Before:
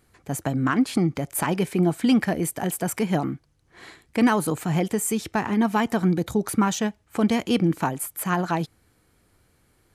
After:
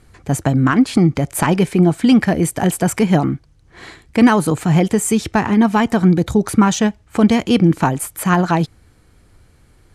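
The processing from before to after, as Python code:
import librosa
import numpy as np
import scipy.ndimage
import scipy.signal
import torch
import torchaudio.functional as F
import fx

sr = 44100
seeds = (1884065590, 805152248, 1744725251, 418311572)

p1 = scipy.signal.sosfilt(scipy.signal.butter(2, 9800.0, 'lowpass', fs=sr, output='sos'), x)
p2 = fx.low_shelf(p1, sr, hz=100.0, db=11.0)
p3 = fx.rider(p2, sr, range_db=4, speed_s=0.5)
p4 = p2 + (p3 * librosa.db_to_amplitude(-1.0))
y = p4 * librosa.db_to_amplitude(1.5)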